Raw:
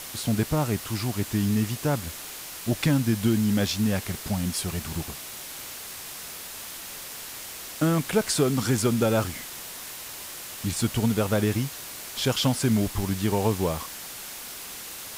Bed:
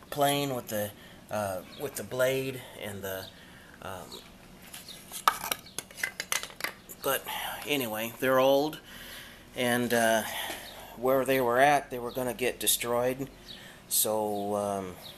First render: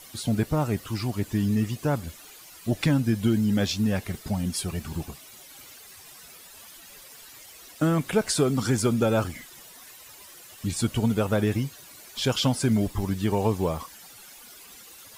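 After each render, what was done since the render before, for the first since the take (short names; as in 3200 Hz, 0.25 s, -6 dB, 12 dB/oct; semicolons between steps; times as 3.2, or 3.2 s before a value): denoiser 13 dB, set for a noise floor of -39 dBFS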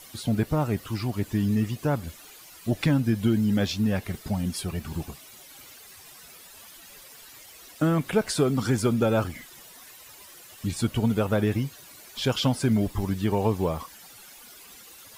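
dynamic EQ 7600 Hz, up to -5 dB, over -48 dBFS, Q 0.82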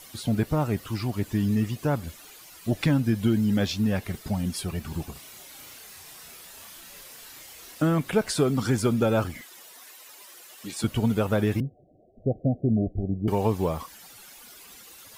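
5.12–7.82 doubler 33 ms -2 dB; 9.41–10.84 HPF 330 Hz; 11.6–13.28 Chebyshev low-pass 750 Hz, order 10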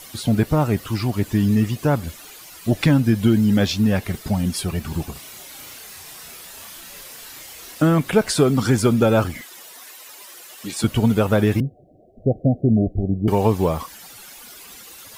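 gain +6.5 dB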